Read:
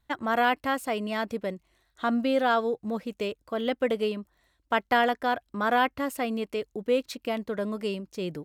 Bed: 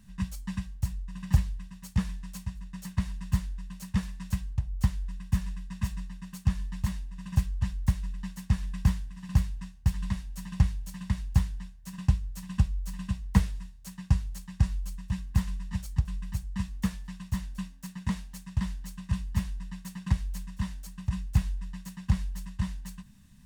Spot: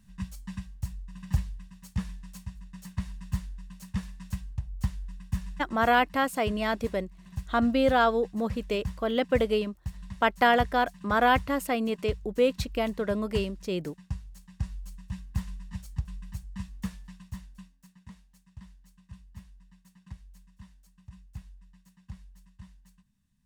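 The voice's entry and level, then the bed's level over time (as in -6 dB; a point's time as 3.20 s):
5.50 s, +1.5 dB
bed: 5.57 s -4 dB
5.95 s -10.5 dB
14.24 s -10.5 dB
14.98 s -5.5 dB
17.07 s -5.5 dB
18.09 s -18 dB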